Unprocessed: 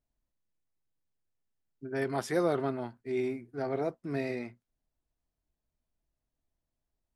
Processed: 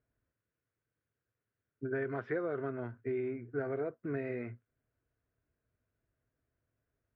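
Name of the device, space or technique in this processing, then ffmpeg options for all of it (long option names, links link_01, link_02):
bass amplifier: -af "acompressor=threshold=-40dB:ratio=5,highpass=67,equalizer=frequency=110:width_type=q:width=4:gain=10,equalizer=frequency=180:width_type=q:width=4:gain=-5,equalizer=frequency=450:width_type=q:width=4:gain=6,equalizer=frequency=840:width_type=q:width=4:gain=-9,equalizer=frequency=1500:width_type=q:width=4:gain=8,lowpass=frequency=2400:width=0.5412,lowpass=frequency=2400:width=1.3066,volume=4.5dB"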